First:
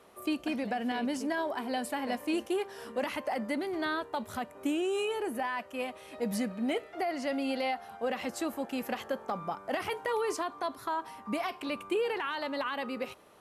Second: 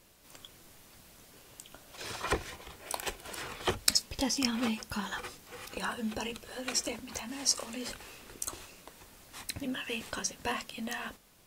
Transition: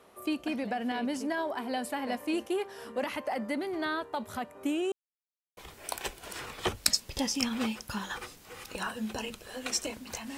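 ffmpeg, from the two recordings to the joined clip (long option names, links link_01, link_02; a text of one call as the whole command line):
ffmpeg -i cue0.wav -i cue1.wav -filter_complex "[0:a]apad=whole_dur=10.37,atrim=end=10.37,asplit=2[link_01][link_02];[link_01]atrim=end=4.92,asetpts=PTS-STARTPTS,afade=type=out:start_time=4.916:duration=0.004:curve=hsin[link_03];[link_02]atrim=start=4.92:end=5.57,asetpts=PTS-STARTPTS,volume=0[link_04];[1:a]atrim=start=2.59:end=7.39,asetpts=PTS-STARTPTS,afade=type=in:duration=0.004:curve=hsin[link_05];[link_03][link_04][link_05]concat=n=3:v=0:a=1" out.wav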